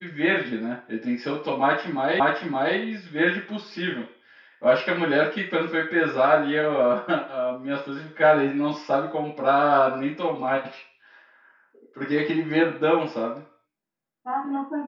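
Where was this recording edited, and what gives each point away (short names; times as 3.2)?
2.2 repeat of the last 0.57 s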